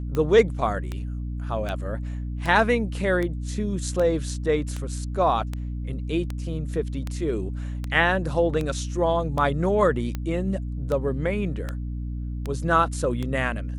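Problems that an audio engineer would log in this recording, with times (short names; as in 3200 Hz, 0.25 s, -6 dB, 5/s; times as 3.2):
hum 60 Hz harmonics 5 -30 dBFS
tick 78 rpm -16 dBFS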